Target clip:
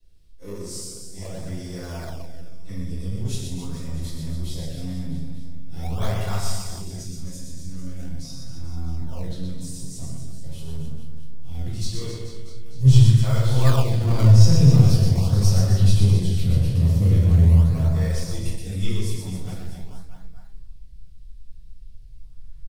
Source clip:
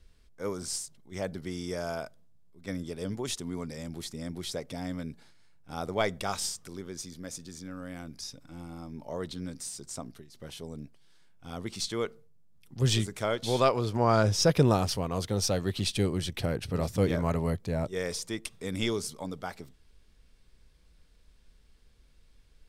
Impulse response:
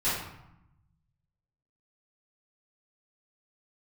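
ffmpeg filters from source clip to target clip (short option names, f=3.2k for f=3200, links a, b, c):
-filter_complex "[0:a]highshelf=f=9.2k:g=8.5,aecho=1:1:120|264|436.8|644.2|893:0.631|0.398|0.251|0.158|0.1,asubboost=boost=5.5:cutoff=140[a];[1:a]atrim=start_sample=2205,atrim=end_sample=6174[b];[a][b]afir=irnorm=-1:irlink=0,acrossover=split=210|710|2100[c][d][e][f];[e]acrusher=samples=33:mix=1:aa=0.000001:lfo=1:lforange=52.8:lforate=0.43[g];[c][d][g][f]amix=inputs=4:normalize=0,volume=-11dB"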